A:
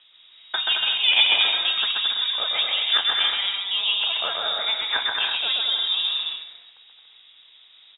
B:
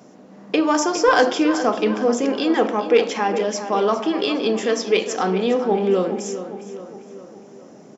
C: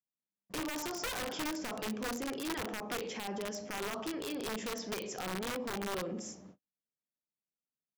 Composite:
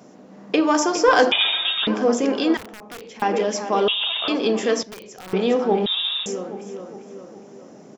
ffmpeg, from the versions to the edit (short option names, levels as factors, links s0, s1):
-filter_complex "[0:a]asplit=3[s0][s1][s2];[2:a]asplit=2[s3][s4];[1:a]asplit=6[s5][s6][s7][s8][s9][s10];[s5]atrim=end=1.322[s11];[s0]atrim=start=1.318:end=1.872[s12];[s6]atrim=start=1.868:end=2.572[s13];[s3]atrim=start=2.568:end=3.222[s14];[s7]atrim=start=3.218:end=3.882[s15];[s1]atrim=start=3.878:end=4.282[s16];[s8]atrim=start=4.278:end=4.832[s17];[s4]atrim=start=4.828:end=5.332[s18];[s9]atrim=start=5.328:end=5.862[s19];[s2]atrim=start=5.858:end=6.262[s20];[s10]atrim=start=6.258[s21];[s11][s12]acrossfade=d=0.004:c1=hsin:c2=hsin[s22];[s22][s13]acrossfade=d=0.004:c1=hsin:c2=hsin[s23];[s23][s14]acrossfade=d=0.004:c1=hsin:c2=hsin[s24];[s24][s15]acrossfade=d=0.004:c1=hsin:c2=hsin[s25];[s25][s16]acrossfade=d=0.004:c1=hsin:c2=hsin[s26];[s26][s17]acrossfade=d=0.004:c1=hsin:c2=hsin[s27];[s27][s18]acrossfade=d=0.004:c1=hsin:c2=hsin[s28];[s28][s19]acrossfade=d=0.004:c1=hsin:c2=hsin[s29];[s29][s20]acrossfade=d=0.004:c1=hsin:c2=hsin[s30];[s30][s21]acrossfade=d=0.004:c1=hsin:c2=hsin"